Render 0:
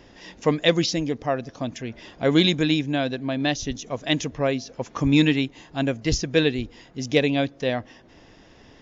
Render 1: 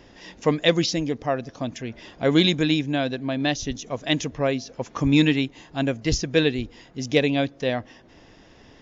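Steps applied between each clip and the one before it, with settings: nothing audible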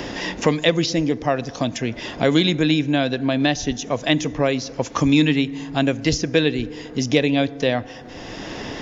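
FDN reverb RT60 1.5 s, low-frequency decay 0.9×, high-frequency decay 0.4×, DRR 18 dB; three-band squash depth 70%; gain +3 dB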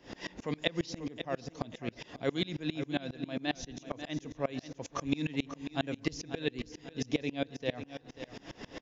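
feedback echo 0.541 s, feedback 38%, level -11 dB; dB-ramp tremolo swelling 7.4 Hz, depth 27 dB; gain -8.5 dB

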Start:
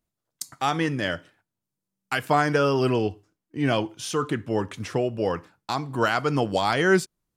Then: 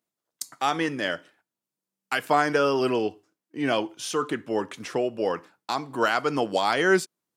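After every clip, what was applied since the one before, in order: HPF 250 Hz 12 dB/oct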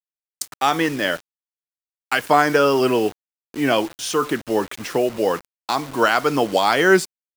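bit-crush 7-bit; gain +6 dB

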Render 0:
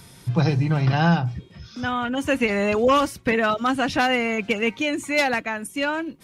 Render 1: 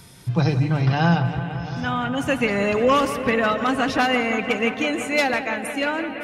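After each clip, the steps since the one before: analogue delay 0.17 s, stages 4096, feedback 84%, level -12 dB; on a send at -21 dB: reverb RT60 1.4 s, pre-delay 58 ms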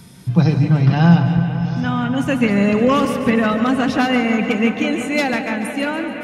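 bell 200 Hz +10.5 dB 0.97 oct; on a send: split-band echo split 620 Hz, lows 0.263 s, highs 0.143 s, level -11 dB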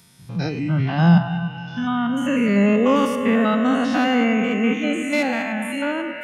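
stepped spectrum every 0.1 s; spectral noise reduction 13 dB; mismatched tape noise reduction encoder only

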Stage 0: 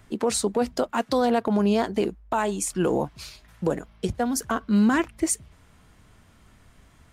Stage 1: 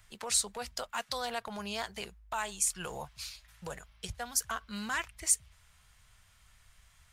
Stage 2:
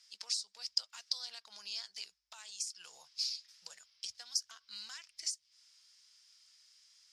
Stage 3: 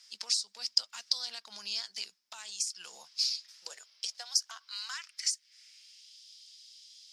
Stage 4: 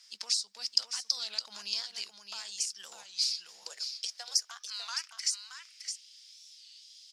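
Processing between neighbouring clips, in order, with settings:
passive tone stack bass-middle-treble 10-0-10
compressor 10:1, threshold -37 dBFS, peak gain reduction 16 dB; band-pass 5100 Hz, Q 6.8; gain +14 dB
high-pass sweep 220 Hz -> 3400 Hz, 3.04–6.2; gain +6 dB
on a send: echo 0.614 s -7.5 dB; on the sum: record warp 33 1/3 rpm, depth 160 cents

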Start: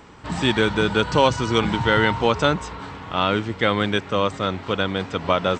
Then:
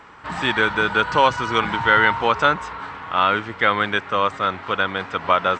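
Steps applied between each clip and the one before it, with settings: bell 1400 Hz +14.5 dB 2.4 oct; gain -8 dB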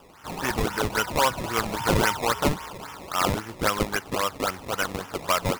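decimation with a swept rate 20×, swing 100% 3.7 Hz; gain -6 dB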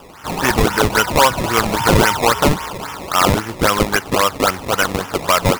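maximiser +12.5 dB; gain -1.5 dB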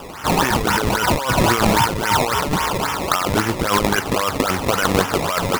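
negative-ratio compressor -20 dBFS, ratio -1; gain +2 dB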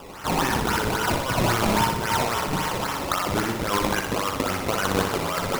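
flutter echo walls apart 10.5 m, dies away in 0.67 s; gain -7 dB

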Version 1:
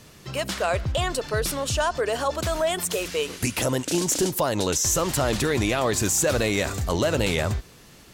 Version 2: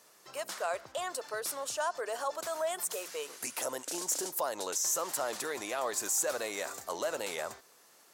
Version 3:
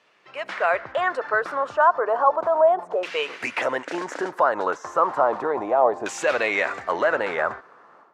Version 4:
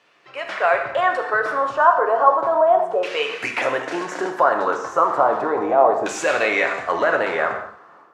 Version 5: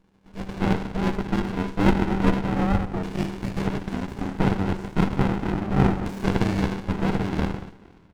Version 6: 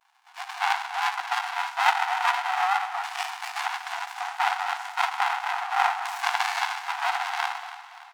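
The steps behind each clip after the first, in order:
HPF 670 Hz 12 dB/oct; bell 2900 Hz -9.5 dB 1.6 oct; gain -5 dB
AGC gain up to 11.5 dB; LFO low-pass saw down 0.33 Hz 730–2800 Hz
non-linear reverb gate 0.27 s falling, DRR 3.5 dB; gain +2 dB
ring modulator 97 Hz; frequency-shifting echo 0.23 s, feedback 40%, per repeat -51 Hz, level -19 dB; running maximum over 65 samples
vibrato 0.39 Hz 41 cents; brick-wall FIR high-pass 690 Hz; feedback echo 0.288 s, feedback 51%, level -14 dB; gain +7 dB

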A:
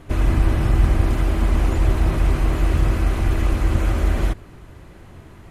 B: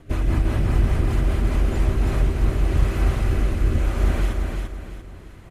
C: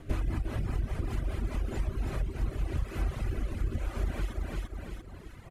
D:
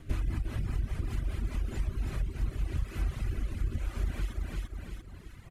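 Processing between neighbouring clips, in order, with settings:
rotary speaker horn 5 Hz, later 0.85 Hz, at 1.48; on a send: feedback echo 0.343 s, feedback 37%, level -4.5 dB; on the sum: gain -1.5 dB
compressor 3:1, threshold -28 dBFS, peak gain reduction 12.5 dB; reverb removal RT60 1.3 s
bell 600 Hz -7.5 dB 2.1 oct

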